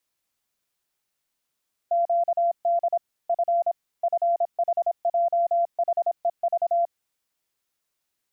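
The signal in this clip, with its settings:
Morse code "QD F FHJHEV" 26 words per minute 686 Hz −18.5 dBFS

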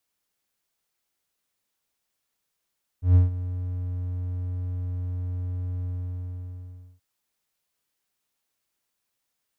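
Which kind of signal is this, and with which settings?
note with an ADSR envelope triangle 90.1 Hz, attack 133 ms, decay 145 ms, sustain −15.5 dB, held 2.83 s, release 1,150 ms −9.5 dBFS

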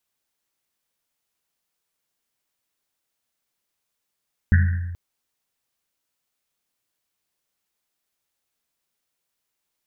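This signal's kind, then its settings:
drum after Risset length 0.43 s, pitch 87 Hz, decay 1.44 s, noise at 1,700 Hz, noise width 400 Hz, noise 15%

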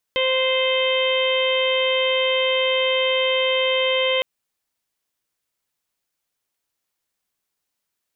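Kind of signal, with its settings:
steady harmonic partials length 4.06 s, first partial 521 Hz, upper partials −10/−19/−5.5/−9/−3/−14 dB, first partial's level −20 dB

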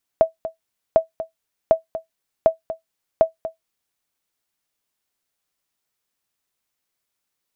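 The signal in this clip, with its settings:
ping with an echo 650 Hz, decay 0.13 s, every 0.75 s, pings 5, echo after 0.24 s, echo −13.5 dB −4.5 dBFS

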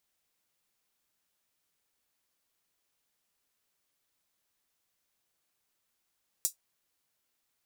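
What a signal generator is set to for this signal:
closed synth hi-hat, high-pass 6,600 Hz, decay 0.12 s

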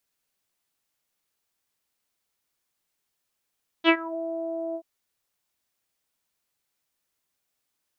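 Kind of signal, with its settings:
subtractive voice saw E4 24 dB per octave, low-pass 650 Hz, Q 4.2, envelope 2.5 octaves, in 0.30 s, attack 50 ms, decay 0.07 s, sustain −20 dB, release 0.07 s, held 0.91 s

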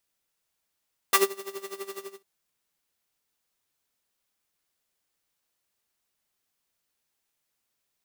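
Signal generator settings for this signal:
subtractive patch with tremolo G4, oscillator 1 square, sub −11.5 dB, noise −1.5 dB, filter highpass, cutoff 350 Hz, Q 1.3, filter decay 0.06 s, filter sustain 15%, attack 2 ms, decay 0.16 s, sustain −23 dB, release 0.25 s, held 0.85 s, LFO 12 Hz, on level 16 dB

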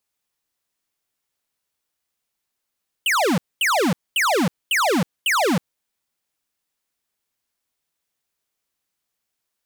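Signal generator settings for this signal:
repeated falling chirps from 3,200 Hz, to 150 Hz, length 0.32 s square, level −18.5 dB, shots 5, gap 0.23 s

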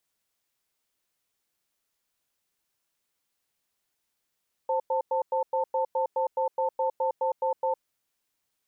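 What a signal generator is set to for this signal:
tone pair in a cadence 525 Hz, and 889 Hz, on 0.11 s, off 0.10 s, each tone −26 dBFS 3.14 s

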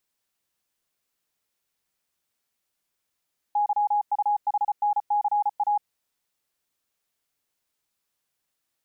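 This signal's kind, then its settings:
Morse code "YUHNCA" 34 words per minute 829 Hz −19.5 dBFS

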